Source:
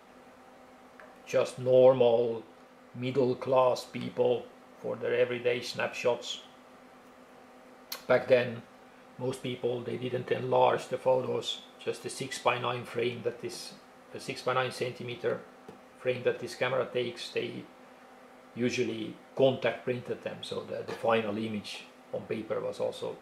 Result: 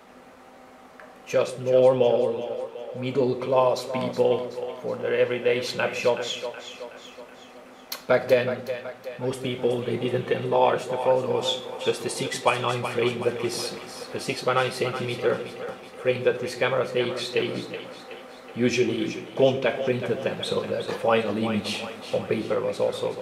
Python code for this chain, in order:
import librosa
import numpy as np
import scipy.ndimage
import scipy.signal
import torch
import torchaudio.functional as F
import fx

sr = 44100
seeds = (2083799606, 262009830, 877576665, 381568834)

p1 = fx.rider(x, sr, range_db=10, speed_s=0.5)
p2 = x + F.gain(torch.from_numpy(p1), -1.0).numpy()
y = fx.echo_split(p2, sr, split_hz=440.0, low_ms=138, high_ms=373, feedback_pct=52, wet_db=-10.0)